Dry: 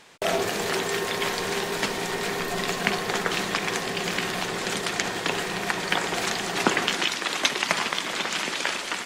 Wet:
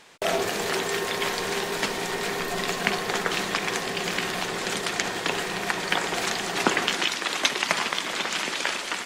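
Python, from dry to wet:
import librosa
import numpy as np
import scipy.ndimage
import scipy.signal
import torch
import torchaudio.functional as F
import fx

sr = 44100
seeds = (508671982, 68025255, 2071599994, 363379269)

y = fx.peak_eq(x, sr, hz=120.0, db=-2.5, octaves=2.0)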